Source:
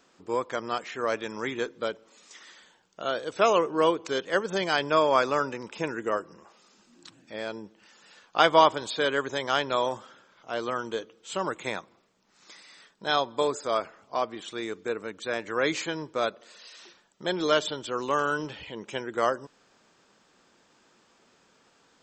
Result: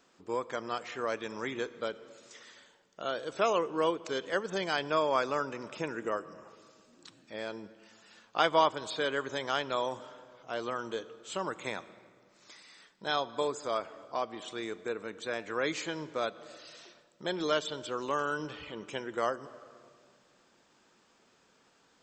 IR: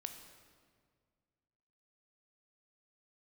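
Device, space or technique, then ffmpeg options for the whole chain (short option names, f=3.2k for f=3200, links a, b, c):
compressed reverb return: -filter_complex "[0:a]asplit=2[a][b];[1:a]atrim=start_sample=2205[c];[b][c]afir=irnorm=-1:irlink=0,acompressor=threshold=-33dB:ratio=6,volume=-1dB[d];[a][d]amix=inputs=2:normalize=0,volume=-7.5dB"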